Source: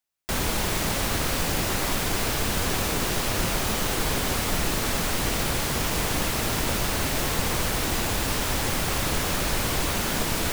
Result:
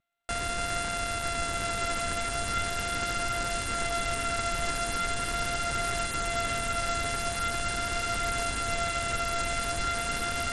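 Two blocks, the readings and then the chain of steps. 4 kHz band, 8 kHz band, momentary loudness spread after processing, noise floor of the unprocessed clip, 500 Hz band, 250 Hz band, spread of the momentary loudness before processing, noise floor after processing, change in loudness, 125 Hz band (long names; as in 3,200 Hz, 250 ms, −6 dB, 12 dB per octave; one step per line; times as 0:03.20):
−6.0 dB, −6.0 dB, 1 LU, −27 dBFS, −3.5 dB, −10.5 dB, 0 LU, −33 dBFS, −4.5 dB, −9.0 dB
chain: samples sorted by size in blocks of 64 samples
graphic EQ with 15 bands 160 Hz −3 dB, 1,600 Hz +10 dB, 10,000 Hz +9 dB
brickwall limiter −16.5 dBFS, peak gain reduction 8.5 dB
pitch vibrato 0.41 Hz 9.9 cents
feedback delay with all-pass diffusion 1,355 ms, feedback 54%, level −6.5 dB
level −3.5 dB
SBC 64 kbit/s 32,000 Hz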